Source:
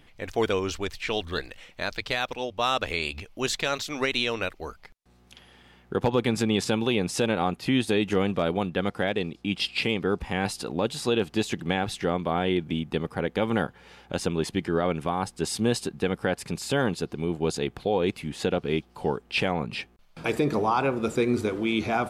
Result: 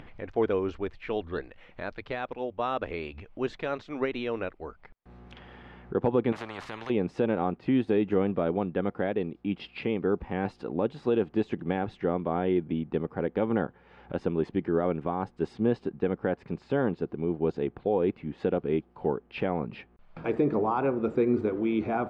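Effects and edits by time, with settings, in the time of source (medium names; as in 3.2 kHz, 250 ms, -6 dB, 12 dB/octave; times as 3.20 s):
6.32–6.90 s: spectrum-flattening compressor 10:1
15.53–18.38 s: distance through air 59 m
whole clip: low-pass 1.8 kHz 12 dB/octave; dynamic bell 340 Hz, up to +6 dB, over -38 dBFS, Q 0.72; upward compressor, threshold -30 dBFS; trim -5.5 dB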